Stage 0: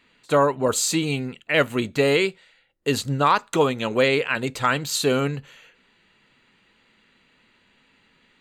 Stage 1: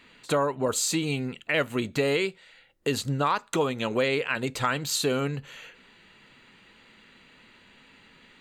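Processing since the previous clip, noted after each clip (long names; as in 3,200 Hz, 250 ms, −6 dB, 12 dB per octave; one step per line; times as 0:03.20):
downward compressor 2 to 1, threshold −37 dBFS, peak gain reduction 13 dB
level +5.5 dB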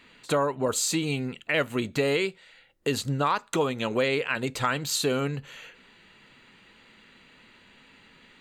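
no processing that can be heard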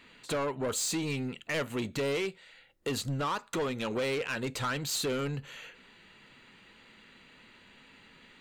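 soft clipping −25.5 dBFS, distortion −10 dB
level −1.5 dB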